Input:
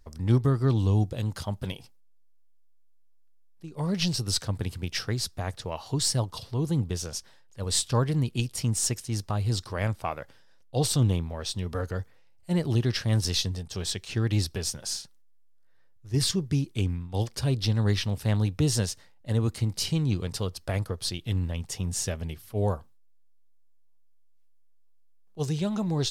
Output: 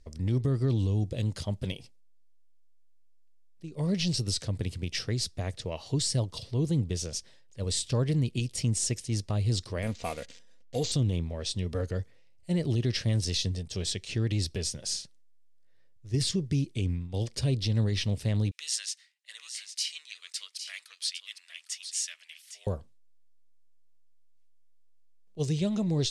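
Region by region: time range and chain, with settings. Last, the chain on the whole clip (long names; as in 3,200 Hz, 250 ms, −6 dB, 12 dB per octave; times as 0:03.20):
0:09.82–0:10.92: spike at every zero crossing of −29 dBFS + comb filter 4.2 ms, depth 50% + bad sample-rate conversion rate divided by 4×, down filtered, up hold
0:18.51–0:22.67: high-pass filter 1,500 Hz 24 dB per octave + single-tap delay 807 ms −10 dB
whole clip: low-pass filter 9,800 Hz 24 dB per octave; flat-topped bell 1,100 Hz −8.5 dB 1.3 octaves; brickwall limiter −19.5 dBFS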